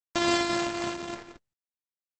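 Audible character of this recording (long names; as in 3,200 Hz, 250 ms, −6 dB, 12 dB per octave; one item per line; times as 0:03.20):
a buzz of ramps at a fixed pitch in blocks of 128 samples
tremolo triangle 3.8 Hz, depth 50%
a quantiser's noise floor 12 bits, dither none
Opus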